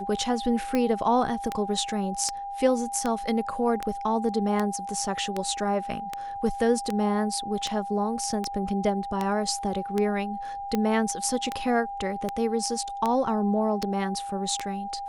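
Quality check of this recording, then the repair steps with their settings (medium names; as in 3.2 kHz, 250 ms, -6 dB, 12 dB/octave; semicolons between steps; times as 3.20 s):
tick 78 rpm -13 dBFS
whine 800 Hz -32 dBFS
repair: de-click; band-stop 800 Hz, Q 30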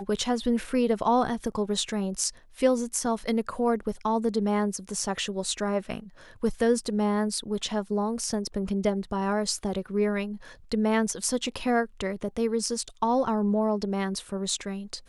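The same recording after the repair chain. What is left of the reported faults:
nothing left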